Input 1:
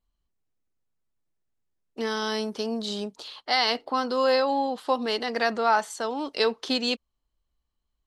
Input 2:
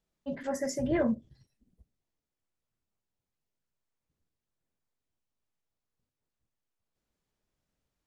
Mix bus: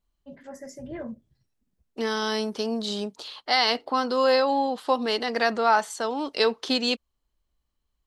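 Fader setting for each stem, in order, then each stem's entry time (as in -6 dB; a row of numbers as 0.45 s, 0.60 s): +1.5 dB, -8.5 dB; 0.00 s, 0.00 s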